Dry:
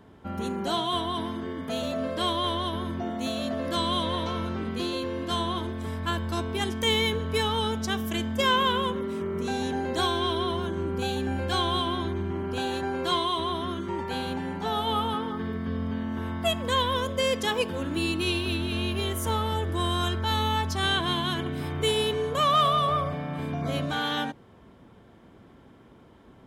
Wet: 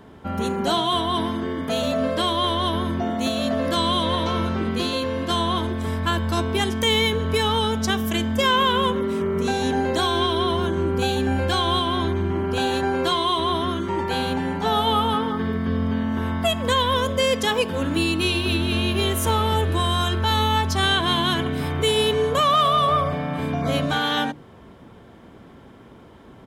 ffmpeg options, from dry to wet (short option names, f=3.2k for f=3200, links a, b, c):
-filter_complex "[0:a]asplit=2[a][b];[b]afade=t=in:st=18.39:d=0.01,afade=t=out:st=19.19:d=0.01,aecho=0:1:420|840|1260|1680|2100|2520|2940|3360:0.141254|0.0988776|0.0692143|0.04845|0.033915|0.0237405|0.0166184|0.0116329[c];[a][c]amix=inputs=2:normalize=0,bandreject=f=50:t=h:w=6,bandreject=f=100:t=h:w=6,bandreject=f=150:t=h:w=6,bandreject=f=200:t=h:w=6,bandreject=f=250:t=h:w=6,bandreject=f=300:t=h:w=6,bandreject=f=350:t=h:w=6,alimiter=limit=-18.5dB:level=0:latency=1:release=217,volume=7.5dB"